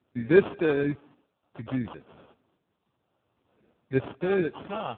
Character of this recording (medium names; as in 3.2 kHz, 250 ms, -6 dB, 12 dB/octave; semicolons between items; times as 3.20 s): phasing stages 12, 0.56 Hz, lowest notch 370–1700 Hz; aliases and images of a low sample rate 2 kHz, jitter 0%; random-step tremolo; AMR-NB